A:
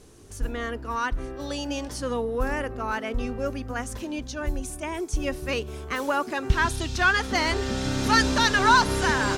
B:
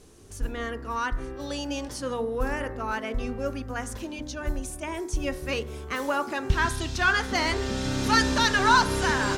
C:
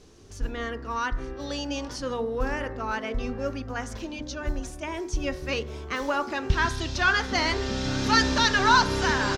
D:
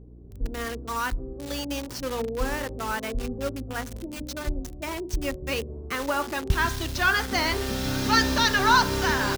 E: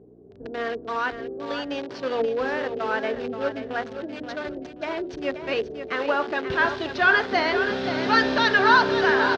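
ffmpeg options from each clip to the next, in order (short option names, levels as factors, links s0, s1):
-af "bandreject=f=60.03:t=h:w=4,bandreject=f=120.06:t=h:w=4,bandreject=f=180.09:t=h:w=4,bandreject=f=240.12:t=h:w=4,bandreject=f=300.15:t=h:w=4,bandreject=f=360.18:t=h:w=4,bandreject=f=420.21:t=h:w=4,bandreject=f=480.24:t=h:w=4,bandreject=f=540.27:t=h:w=4,bandreject=f=600.3:t=h:w=4,bandreject=f=660.33:t=h:w=4,bandreject=f=720.36:t=h:w=4,bandreject=f=780.39:t=h:w=4,bandreject=f=840.42:t=h:w=4,bandreject=f=900.45:t=h:w=4,bandreject=f=960.48:t=h:w=4,bandreject=f=1020.51:t=h:w=4,bandreject=f=1080.54:t=h:w=4,bandreject=f=1140.57:t=h:w=4,bandreject=f=1200.6:t=h:w=4,bandreject=f=1260.63:t=h:w=4,bandreject=f=1320.66:t=h:w=4,bandreject=f=1380.69:t=h:w=4,bandreject=f=1440.72:t=h:w=4,bandreject=f=1500.75:t=h:w=4,bandreject=f=1560.78:t=h:w=4,bandreject=f=1620.81:t=h:w=4,bandreject=f=1680.84:t=h:w=4,bandreject=f=1740.87:t=h:w=4,bandreject=f=1800.9:t=h:w=4,bandreject=f=1860.93:t=h:w=4,bandreject=f=1920.96:t=h:w=4,bandreject=f=1980.99:t=h:w=4,bandreject=f=2041.02:t=h:w=4,bandreject=f=2101.05:t=h:w=4,bandreject=f=2161.08:t=h:w=4,bandreject=f=2221.11:t=h:w=4,volume=0.891"
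-filter_complex "[0:a]highshelf=f=7300:t=q:w=1.5:g=-9,asplit=2[s0][s1];[s1]adelay=874.6,volume=0.112,highshelf=f=4000:g=-19.7[s2];[s0][s2]amix=inputs=2:normalize=0"
-filter_complex "[0:a]acrossover=split=660[s0][s1];[s1]acrusher=bits=5:mix=0:aa=0.000001[s2];[s0][s2]amix=inputs=2:normalize=0,aeval=exprs='val(0)+0.00501*(sin(2*PI*60*n/s)+sin(2*PI*2*60*n/s)/2+sin(2*PI*3*60*n/s)/3+sin(2*PI*4*60*n/s)/4+sin(2*PI*5*60*n/s)/5)':c=same"
-filter_complex "[0:a]highpass=190,equalizer=f=420:t=q:w=4:g=9,equalizer=f=680:t=q:w=4:g=8,equalizer=f=1600:t=q:w=4:g=5,lowpass=f=4200:w=0.5412,lowpass=f=4200:w=1.3066,asplit=2[s0][s1];[s1]aecho=0:1:528|1056|1584:0.335|0.0904|0.0244[s2];[s0][s2]amix=inputs=2:normalize=0"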